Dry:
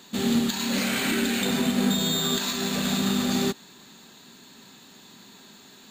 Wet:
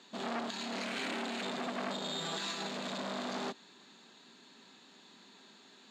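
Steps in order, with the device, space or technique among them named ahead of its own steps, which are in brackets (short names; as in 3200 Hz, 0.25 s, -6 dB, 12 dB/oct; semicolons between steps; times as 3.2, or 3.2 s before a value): public-address speaker with an overloaded transformer (core saturation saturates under 1600 Hz; BPF 240–5300 Hz); 2.2–2.67 comb 6.1 ms, depth 65%; gain -7 dB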